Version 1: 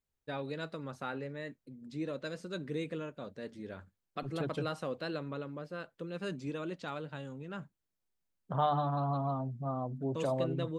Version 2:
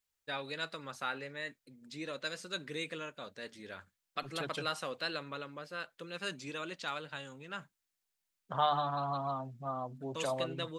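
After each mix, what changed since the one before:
master: add tilt shelving filter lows −9 dB, about 800 Hz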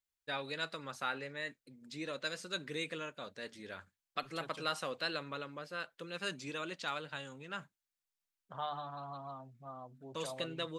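second voice −10.0 dB

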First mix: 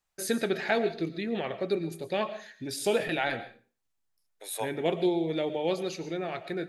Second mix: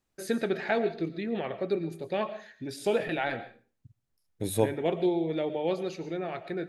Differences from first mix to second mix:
first voice: add high-shelf EQ 3,500 Hz −10 dB
second voice: remove high-pass filter 650 Hz 24 dB per octave

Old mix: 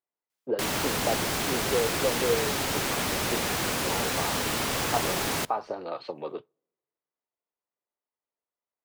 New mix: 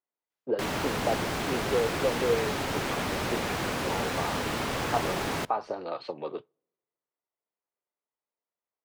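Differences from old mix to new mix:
background: add low-pass filter 2,300 Hz 6 dB per octave
master: add high-shelf EQ 9,800 Hz +3.5 dB

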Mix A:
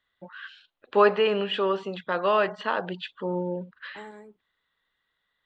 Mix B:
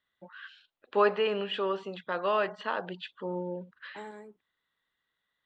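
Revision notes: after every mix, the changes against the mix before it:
first voice −5.0 dB
master: add low-shelf EQ 83 Hz −10 dB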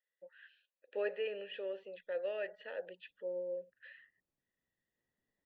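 first voice: add formant filter e
second voice: entry +1.75 s

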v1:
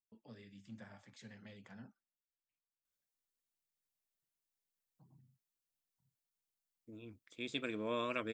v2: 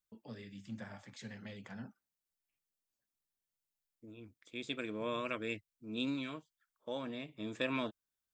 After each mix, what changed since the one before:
first voice +7.0 dB
second voice: entry −2.85 s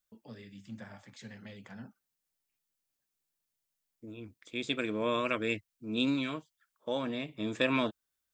second voice +7.0 dB

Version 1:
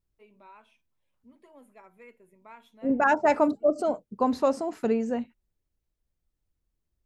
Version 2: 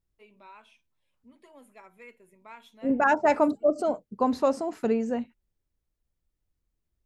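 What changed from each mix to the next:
first voice: add parametric band 5,300 Hz +7.5 dB 2.9 octaves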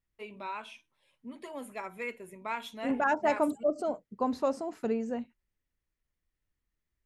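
first voice +11.5 dB
second voice −5.5 dB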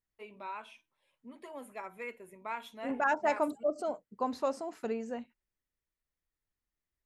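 first voice: add parametric band 5,300 Hz −7.5 dB 2.9 octaves
master: add low-shelf EQ 390 Hz −8.5 dB

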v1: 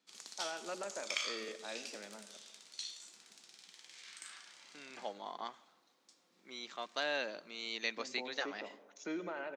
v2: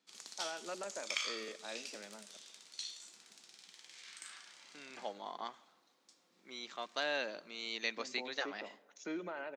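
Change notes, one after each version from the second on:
first voice: send −7.5 dB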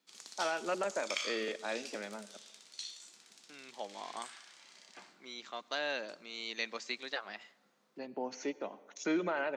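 first voice +9.0 dB
second voice: entry −1.25 s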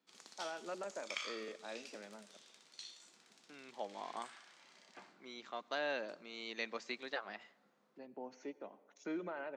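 first voice −8.5 dB
master: add high-shelf EQ 2,700 Hz −10 dB

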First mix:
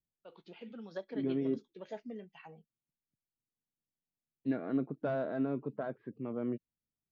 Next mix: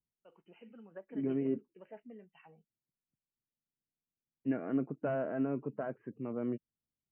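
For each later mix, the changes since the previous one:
first voice −7.0 dB
master: add linear-phase brick-wall low-pass 3,100 Hz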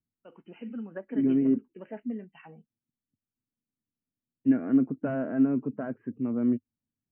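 first voice +7.5 dB
master: add graphic EQ with 15 bands 100 Hz +9 dB, 250 Hz +12 dB, 1,600 Hz +4 dB

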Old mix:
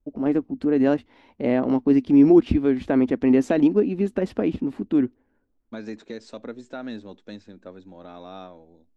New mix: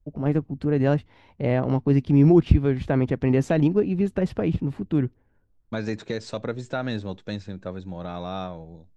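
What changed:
second voice +8.0 dB
master: add low shelf with overshoot 190 Hz +7.5 dB, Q 3

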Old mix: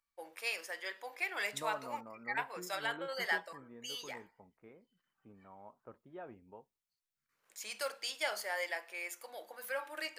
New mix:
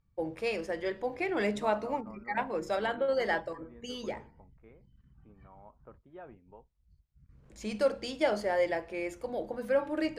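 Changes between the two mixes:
first voice: remove high-pass filter 1,200 Hz 12 dB per octave
master: add high-frequency loss of the air 60 metres

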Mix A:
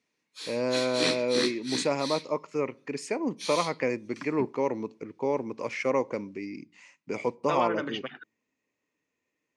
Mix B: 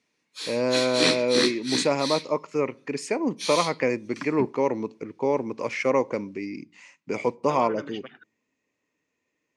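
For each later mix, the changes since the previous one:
first voice +4.0 dB
second voice −5.5 dB
background +5.5 dB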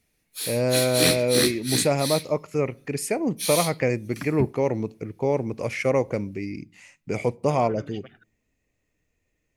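second voice −5.0 dB
master: remove loudspeaker in its box 240–7,000 Hz, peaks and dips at 260 Hz +3 dB, 700 Hz −5 dB, 1,000 Hz +8 dB

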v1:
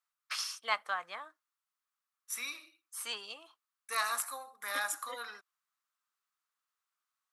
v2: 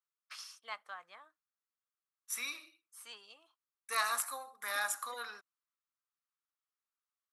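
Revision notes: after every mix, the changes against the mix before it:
first voice −11.5 dB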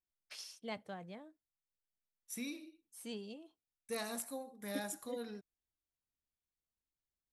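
second voice −7.0 dB
master: remove high-pass with resonance 1,200 Hz, resonance Q 4.9

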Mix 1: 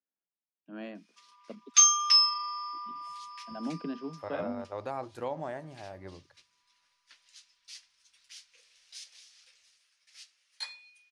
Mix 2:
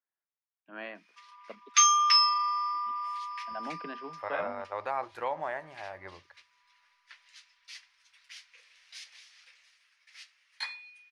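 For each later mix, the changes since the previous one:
master: add octave-band graphic EQ 125/250/1,000/2,000/8,000 Hz −9/−9/+6/+9/−6 dB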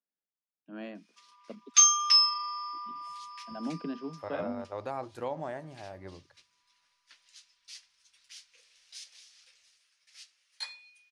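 master: add octave-band graphic EQ 125/250/1,000/2,000/8,000 Hz +9/+9/−6/−9/+6 dB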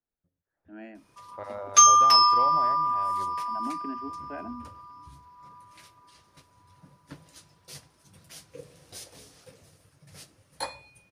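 first voice: add phaser with its sweep stopped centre 750 Hz, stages 8
second voice: entry −2.85 s
background: remove flat-topped band-pass 3,800 Hz, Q 0.83

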